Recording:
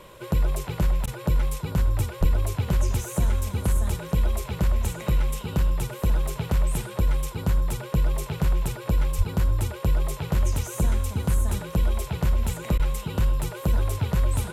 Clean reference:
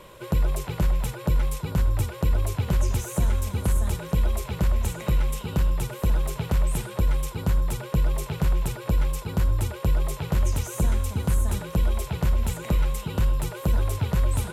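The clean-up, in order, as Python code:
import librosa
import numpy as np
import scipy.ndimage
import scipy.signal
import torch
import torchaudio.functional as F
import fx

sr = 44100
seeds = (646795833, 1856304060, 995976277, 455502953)

y = fx.highpass(x, sr, hz=140.0, slope=24, at=(2.2, 2.32), fade=0.02)
y = fx.highpass(y, sr, hz=140.0, slope=24, at=(9.17, 9.29), fade=0.02)
y = fx.fix_interpolate(y, sr, at_s=(1.06, 12.78), length_ms=13.0)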